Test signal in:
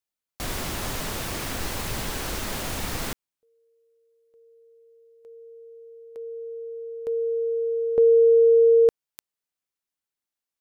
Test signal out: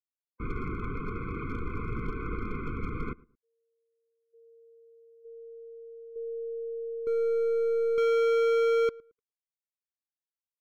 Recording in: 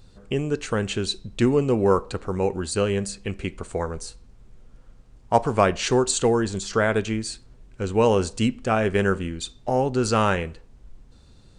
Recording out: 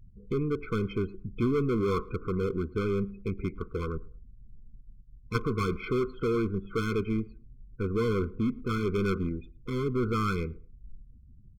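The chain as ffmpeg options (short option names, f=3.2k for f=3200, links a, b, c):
-filter_complex "[0:a]lowpass=f=2.2k:w=0.5412,lowpass=f=2.2k:w=1.3066,afftdn=nr=35:nf=-44,aeval=exprs='0.668*(cos(1*acos(clip(val(0)/0.668,-1,1)))-cos(1*PI/2))+0.0188*(cos(3*acos(clip(val(0)/0.668,-1,1)))-cos(3*PI/2))+0.0944*(cos(6*acos(clip(val(0)/0.668,-1,1)))-cos(6*PI/2))':c=same,aeval=exprs='clip(val(0),-1,0.0668)':c=same,asplit=2[a][b];[b]adelay=111,lowpass=f=1.3k:p=1,volume=-22dB,asplit=2[c][d];[d]adelay=111,lowpass=f=1.3k:p=1,volume=0.25[e];[c][e]amix=inputs=2:normalize=0[f];[a][f]amix=inputs=2:normalize=0,afftfilt=real='re*eq(mod(floor(b*sr/1024/510),2),0)':imag='im*eq(mod(floor(b*sr/1024/510),2),0)':win_size=1024:overlap=0.75"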